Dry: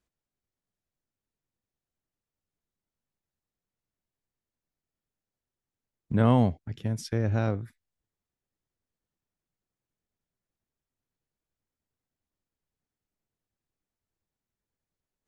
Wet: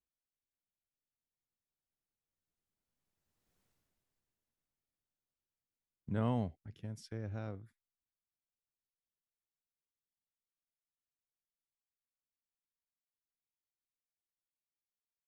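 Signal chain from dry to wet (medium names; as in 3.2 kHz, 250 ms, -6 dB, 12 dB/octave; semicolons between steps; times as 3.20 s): Doppler pass-by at 3.61 s, 8 m/s, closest 1.5 m; trim +10.5 dB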